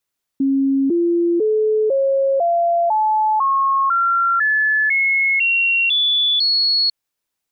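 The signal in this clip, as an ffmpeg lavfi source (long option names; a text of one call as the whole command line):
ffmpeg -f lavfi -i "aevalsrc='0.211*clip(min(mod(t,0.5),0.5-mod(t,0.5))/0.005,0,1)*sin(2*PI*272*pow(2,floor(t/0.5)/3)*mod(t,0.5))':duration=6.5:sample_rate=44100" out.wav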